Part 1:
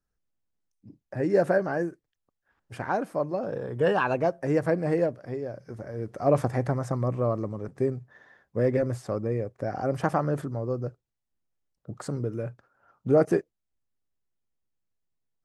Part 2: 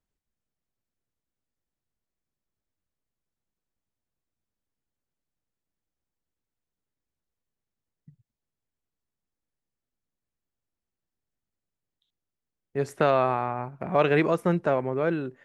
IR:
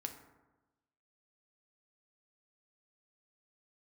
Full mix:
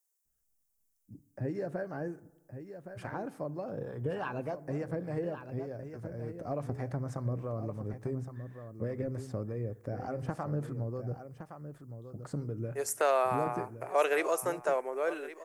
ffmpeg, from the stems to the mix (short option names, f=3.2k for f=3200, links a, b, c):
-filter_complex "[0:a]acompressor=threshold=-27dB:ratio=4,acrossover=split=550[a][b];[a]aeval=exprs='val(0)*(1-0.5/2+0.5/2*cos(2*PI*3.4*n/s))':c=same[c];[b]aeval=exprs='val(0)*(1-0.5/2-0.5/2*cos(2*PI*3.4*n/s))':c=same[d];[c][d]amix=inputs=2:normalize=0,adelay=250,volume=-7.5dB,asplit=3[e][f][g];[f]volume=-8dB[h];[g]volume=-8dB[i];[1:a]highpass=f=430:w=0.5412,highpass=f=430:w=1.3066,aexciter=amount=9.4:drive=3.2:freq=5.5k,volume=-5dB,asplit=2[j][k];[k]volume=-16.5dB[l];[2:a]atrim=start_sample=2205[m];[h][m]afir=irnorm=-1:irlink=0[n];[i][l]amix=inputs=2:normalize=0,aecho=0:1:1116:1[o];[e][j][n][o]amix=inputs=4:normalize=0,lowshelf=f=180:g=8"